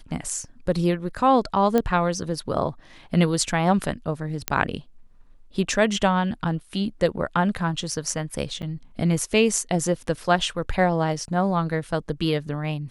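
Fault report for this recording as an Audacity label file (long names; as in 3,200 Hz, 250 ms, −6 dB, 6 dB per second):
1.780000	1.780000	click −9 dBFS
4.480000	4.480000	click −4 dBFS
8.620000	8.630000	drop-out 7.5 ms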